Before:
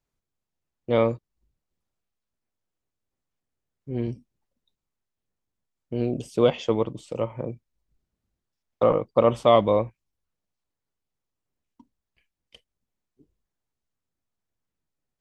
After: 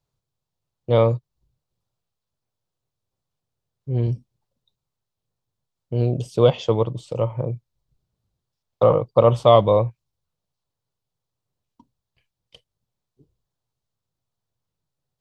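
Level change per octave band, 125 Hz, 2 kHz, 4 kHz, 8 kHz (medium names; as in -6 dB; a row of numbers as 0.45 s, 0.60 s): +10.5 dB, -2.0 dB, +3.5 dB, no reading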